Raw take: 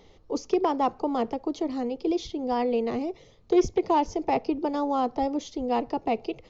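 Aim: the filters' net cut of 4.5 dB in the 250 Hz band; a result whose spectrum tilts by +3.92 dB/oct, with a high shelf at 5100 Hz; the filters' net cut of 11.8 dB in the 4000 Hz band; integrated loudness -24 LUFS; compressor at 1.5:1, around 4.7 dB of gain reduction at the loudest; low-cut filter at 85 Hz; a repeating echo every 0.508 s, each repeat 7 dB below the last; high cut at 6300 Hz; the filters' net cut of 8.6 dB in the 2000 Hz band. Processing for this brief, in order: HPF 85 Hz; LPF 6300 Hz; bell 250 Hz -6 dB; bell 2000 Hz -6.5 dB; bell 4000 Hz -9 dB; high shelf 5100 Hz -9 dB; compressor 1.5:1, threshold -32 dBFS; feedback echo 0.508 s, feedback 45%, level -7 dB; gain +8.5 dB

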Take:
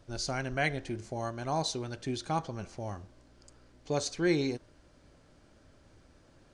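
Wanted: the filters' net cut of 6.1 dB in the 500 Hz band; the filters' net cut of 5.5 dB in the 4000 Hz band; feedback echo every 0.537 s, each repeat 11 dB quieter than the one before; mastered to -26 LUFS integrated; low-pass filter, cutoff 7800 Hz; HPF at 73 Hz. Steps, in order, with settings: HPF 73 Hz; LPF 7800 Hz; bell 500 Hz -9 dB; bell 4000 Hz -6 dB; feedback echo 0.537 s, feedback 28%, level -11 dB; gain +11 dB

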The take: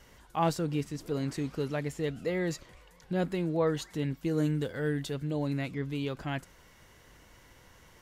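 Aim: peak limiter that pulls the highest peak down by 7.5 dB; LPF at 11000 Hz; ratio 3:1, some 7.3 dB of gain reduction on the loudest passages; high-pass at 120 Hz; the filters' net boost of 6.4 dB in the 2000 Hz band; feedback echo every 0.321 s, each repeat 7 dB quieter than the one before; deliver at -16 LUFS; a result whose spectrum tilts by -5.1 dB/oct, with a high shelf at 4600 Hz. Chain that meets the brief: HPF 120 Hz; LPF 11000 Hz; bell 2000 Hz +6.5 dB; high shelf 4600 Hz +7 dB; compressor 3:1, threshold -32 dBFS; limiter -27 dBFS; feedback echo 0.321 s, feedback 45%, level -7 dB; gain +21 dB

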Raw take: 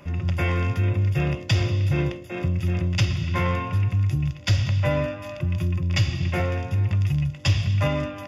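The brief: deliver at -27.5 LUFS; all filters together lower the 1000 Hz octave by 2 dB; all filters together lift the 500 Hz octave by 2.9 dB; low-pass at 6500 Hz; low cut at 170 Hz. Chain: HPF 170 Hz; LPF 6500 Hz; bell 500 Hz +5 dB; bell 1000 Hz -4 dB; gain +1 dB

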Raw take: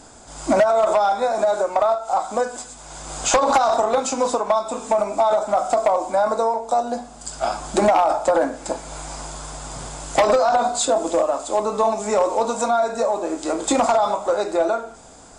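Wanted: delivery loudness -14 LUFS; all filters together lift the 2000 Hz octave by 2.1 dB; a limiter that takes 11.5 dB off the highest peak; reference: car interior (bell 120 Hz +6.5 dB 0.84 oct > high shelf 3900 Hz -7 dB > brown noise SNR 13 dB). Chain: bell 2000 Hz +4.5 dB; limiter -18.5 dBFS; bell 120 Hz +6.5 dB 0.84 oct; high shelf 3900 Hz -7 dB; brown noise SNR 13 dB; gain +13.5 dB

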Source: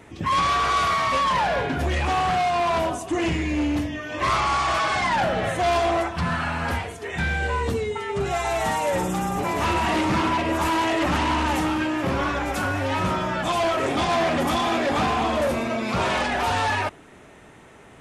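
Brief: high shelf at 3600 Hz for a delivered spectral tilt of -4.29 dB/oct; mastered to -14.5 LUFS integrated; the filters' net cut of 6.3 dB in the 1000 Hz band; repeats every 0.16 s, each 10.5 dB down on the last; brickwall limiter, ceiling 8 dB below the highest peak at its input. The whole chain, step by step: bell 1000 Hz -8.5 dB; high shelf 3600 Hz +3.5 dB; limiter -22.5 dBFS; feedback echo 0.16 s, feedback 30%, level -10.5 dB; gain +14.5 dB

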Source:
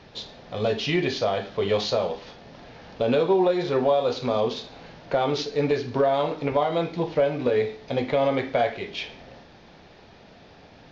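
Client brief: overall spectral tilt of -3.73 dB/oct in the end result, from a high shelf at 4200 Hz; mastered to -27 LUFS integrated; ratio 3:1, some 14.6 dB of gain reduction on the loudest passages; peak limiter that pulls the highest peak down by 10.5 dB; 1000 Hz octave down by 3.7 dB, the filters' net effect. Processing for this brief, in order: bell 1000 Hz -6 dB; high shelf 4200 Hz +5 dB; compressor 3:1, threshold -39 dBFS; gain +16 dB; limiter -17.5 dBFS

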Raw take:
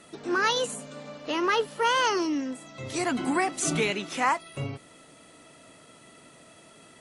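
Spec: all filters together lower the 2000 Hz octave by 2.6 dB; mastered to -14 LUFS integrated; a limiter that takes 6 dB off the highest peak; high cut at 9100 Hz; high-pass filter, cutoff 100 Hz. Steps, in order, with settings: HPF 100 Hz; LPF 9100 Hz; bell 2000 Hz -3.5 dB; gain +16 dB; limiter -3.5 dBFS

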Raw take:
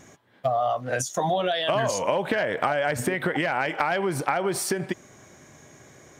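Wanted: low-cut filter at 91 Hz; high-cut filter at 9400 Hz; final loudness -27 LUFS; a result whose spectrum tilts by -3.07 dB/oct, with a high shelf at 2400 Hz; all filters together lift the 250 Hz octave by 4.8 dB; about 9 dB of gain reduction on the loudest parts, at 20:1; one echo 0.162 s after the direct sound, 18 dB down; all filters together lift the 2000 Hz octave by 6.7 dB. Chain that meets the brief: HPF 91 Hz; LPF 9400 Hz; bell 250 Hz +7 dB; bell 2000 Hz +5.5 dB; high shelf 2400 Hz +6.5 dB; compressor 20:1, threshold -25 dBFS; echo 0.162 s -18 dB; gain +2.5 dB

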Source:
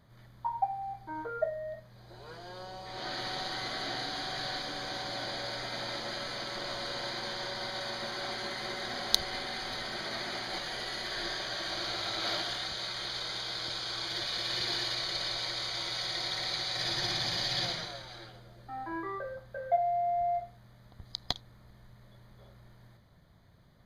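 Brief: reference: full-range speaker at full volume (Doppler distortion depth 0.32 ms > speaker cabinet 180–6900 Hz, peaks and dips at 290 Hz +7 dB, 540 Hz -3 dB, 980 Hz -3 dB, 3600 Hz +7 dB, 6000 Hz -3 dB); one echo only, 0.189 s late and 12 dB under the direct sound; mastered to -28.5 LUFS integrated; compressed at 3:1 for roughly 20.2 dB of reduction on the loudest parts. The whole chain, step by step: compressor 3:1, threshold -50 dBFS; echo 0.189 s -12 dB; Doppler distortion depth 0.32 ms; speaker cabinet 180–6900 Hz, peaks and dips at 290 Hz +7 dB, 540 Hz -3 dB, 980 Hz -3 dB, 3600 Hz +7 dB, 6000 Hz -3 dB; gain +16 dB

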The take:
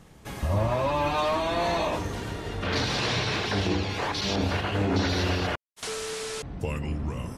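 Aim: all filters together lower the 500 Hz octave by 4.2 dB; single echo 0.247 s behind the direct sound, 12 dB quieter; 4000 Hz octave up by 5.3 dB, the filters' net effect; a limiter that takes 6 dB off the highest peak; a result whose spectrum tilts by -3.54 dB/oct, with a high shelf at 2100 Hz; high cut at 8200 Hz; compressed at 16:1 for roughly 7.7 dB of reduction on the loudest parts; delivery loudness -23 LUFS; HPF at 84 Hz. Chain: HPF 84 Hz; LPF 8200 Hz; bell 500 Hz -6 dB; high shelf 2100 Hz +4 dB; bell 4000 Hz +3 dB; compressor 16:1, threshold -29 dBFS; limiter -25.5 dBFS; echo 0.247 s -12 dB; gain +11 dB

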